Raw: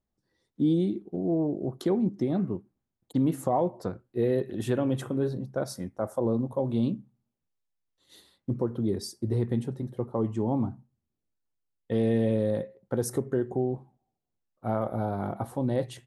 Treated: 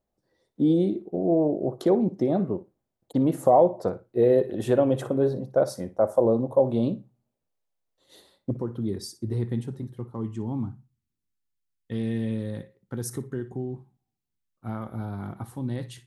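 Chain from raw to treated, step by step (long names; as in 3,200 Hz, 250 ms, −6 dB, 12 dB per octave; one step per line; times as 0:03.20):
parametric band 590 Hz +10.5 dB 1.2 octaves, from 0:08.51 −5.5 dB, from 0:09.84 −13.5 dB
flutter between parallel walls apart 10 metres, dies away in 0.22 s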